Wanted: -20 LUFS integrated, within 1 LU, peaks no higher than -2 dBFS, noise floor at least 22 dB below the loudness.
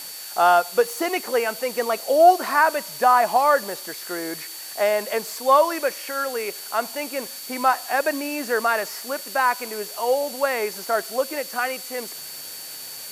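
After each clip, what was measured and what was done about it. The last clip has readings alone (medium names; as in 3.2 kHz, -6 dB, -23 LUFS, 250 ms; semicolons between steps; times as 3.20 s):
steady tone 4.5 kHz; tone level -40 dBFS; noise floor -36 dBFS; noise floor target -44 dBFS; loudness -22.0 LUFS; peak level -4.0 dBFS; loudness target -20.0 LUFS
-> band-stop 4.5 kHz, Q 30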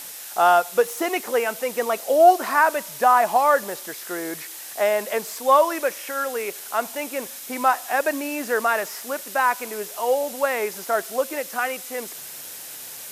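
steady tone not found; noise floor -38 dBFS; noise floor target -44 dBFS
-> noise print and reduce 6 dB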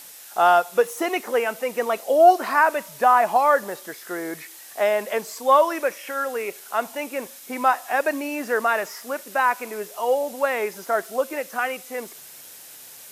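noise floor -43 dBFS; noise floor target -44 dBFS
-> noise print and reduce 6 dB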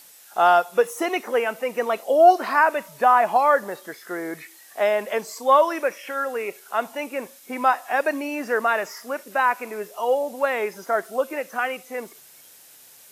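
noise floor -49 dBFS; loudness -22.0 LUFS; peak level -4.5 dBFS; loudness target -20.0 LUFS
-> trim +2 dB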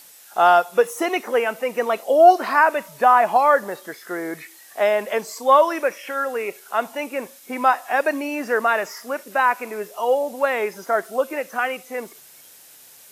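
loudness -20.0 LUFS; peak level -2.5 dBFS; noise floor -47 dBFS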